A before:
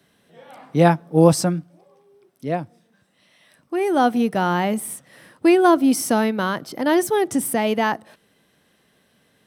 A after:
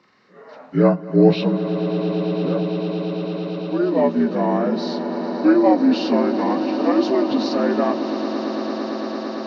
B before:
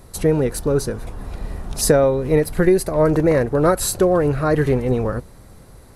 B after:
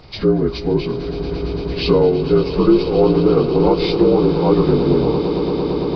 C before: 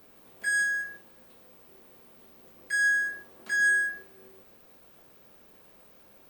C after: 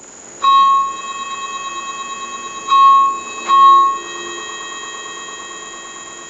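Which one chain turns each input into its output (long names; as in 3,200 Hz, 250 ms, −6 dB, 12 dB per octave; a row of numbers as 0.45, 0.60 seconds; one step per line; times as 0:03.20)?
partials spread apart or drawn together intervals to 78%
high-shelf EQ 3,300 Hz −11 dB
tuned comb filter 350 Hz, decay 0.8 s, mix 50%
on a send: echo that builds up and dies away 113 ms, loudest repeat 8, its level −15 dB
on the sum: one half of a high-frequency compander encoder only
normalise the peak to −1.5 dBFS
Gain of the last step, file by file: +7.0, +8.5, +23.5 decibels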